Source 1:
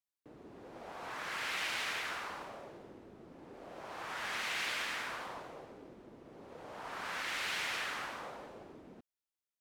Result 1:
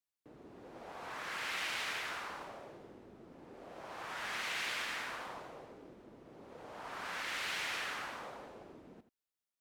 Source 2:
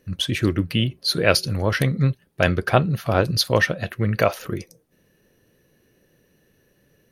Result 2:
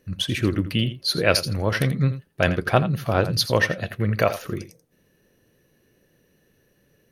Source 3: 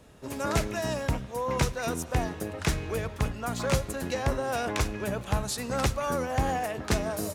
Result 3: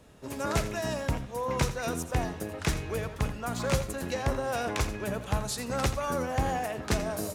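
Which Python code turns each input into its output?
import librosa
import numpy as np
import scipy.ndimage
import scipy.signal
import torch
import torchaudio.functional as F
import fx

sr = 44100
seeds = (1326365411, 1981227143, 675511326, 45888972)

y = x + 10.0 ** (-13.0 / 20.0) * np.pad(x, (int(84 * sr / 1000.0), 0))[:len(x)]
y = F.gain(torch.from_numpy(y), -1.5).numpy()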